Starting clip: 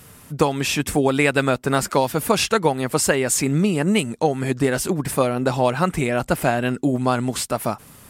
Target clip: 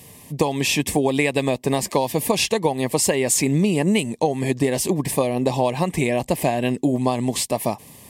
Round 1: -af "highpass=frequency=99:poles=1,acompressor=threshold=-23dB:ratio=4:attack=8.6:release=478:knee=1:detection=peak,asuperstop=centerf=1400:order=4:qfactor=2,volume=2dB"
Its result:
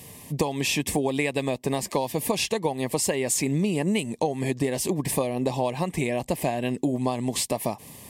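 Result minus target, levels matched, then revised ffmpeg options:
downward compressor: peak gain reduction +5.5 dB
-af "highpass=frequency=99:poles=1,acompressor=threshold=-15.5dB:ratio=4:attack=8.6:release=478:knee=1:detection=peak,asuperstop=centerf=1400:order=4:qfactor=2,volume=2dB"

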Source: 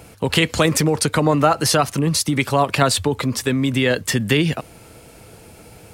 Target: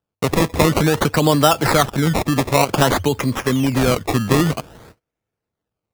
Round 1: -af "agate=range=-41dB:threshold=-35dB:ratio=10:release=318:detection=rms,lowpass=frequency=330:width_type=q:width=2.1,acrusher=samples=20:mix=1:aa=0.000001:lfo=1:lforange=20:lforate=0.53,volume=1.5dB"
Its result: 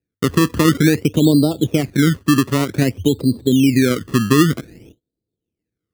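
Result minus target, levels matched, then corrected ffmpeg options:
250 Hz band +3.5 dB
-af "agate=range=-41dB:threshold=-35dB:ratio=10:release=318:detection=rms,acrusher=samples=20:mix=1:aa=0.000001:lfo=1:lforange=20:lforate=0.53,volume=1.5dB"

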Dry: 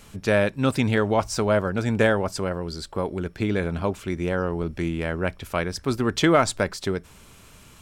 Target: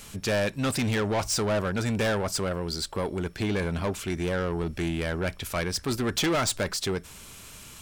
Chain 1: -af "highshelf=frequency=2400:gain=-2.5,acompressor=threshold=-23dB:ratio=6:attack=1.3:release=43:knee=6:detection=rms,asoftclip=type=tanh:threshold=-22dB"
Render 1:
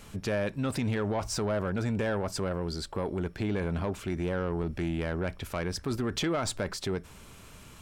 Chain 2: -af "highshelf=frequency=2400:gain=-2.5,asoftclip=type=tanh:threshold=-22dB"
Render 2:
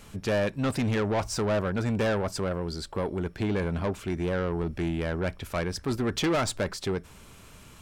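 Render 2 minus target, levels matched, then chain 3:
4,000 Hz band −4.5 dB
-af "highshelf=frequency=2400:gain=8.5,asoftclip=type=tanh:threshold=-22dB"

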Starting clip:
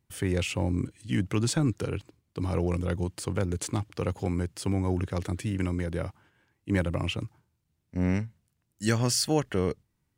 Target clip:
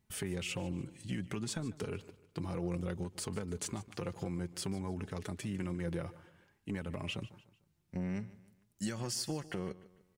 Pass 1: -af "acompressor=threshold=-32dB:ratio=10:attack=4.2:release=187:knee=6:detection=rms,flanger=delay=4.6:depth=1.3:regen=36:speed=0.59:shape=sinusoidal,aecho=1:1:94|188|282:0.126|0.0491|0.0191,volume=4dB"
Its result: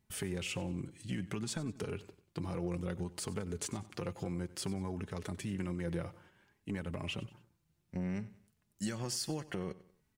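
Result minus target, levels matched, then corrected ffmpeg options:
echo 55 ms early
-af "acompressor=threshold=-32dB:ratio=10:attack=4.2:release=187:knee=6:detection=rms,flanger=delay=4.6:depth=1.3:regen=36:speed=0.59:shape=sinusoidal,aecho=1:1:149|298|447:0.126|0.0491|0.0191,volume=4dB"

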